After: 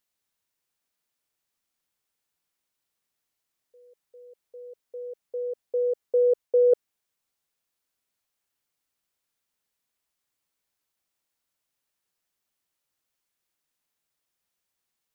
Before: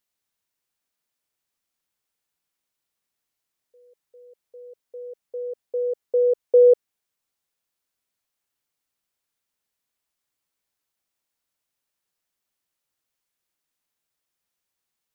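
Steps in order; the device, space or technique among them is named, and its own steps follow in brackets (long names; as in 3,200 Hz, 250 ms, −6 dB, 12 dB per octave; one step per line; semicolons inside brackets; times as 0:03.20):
compression on the reversed sound (reversed playback; downward compressor, threshold −17 dBFS, peak gain reduction 6 dB; reversed playback)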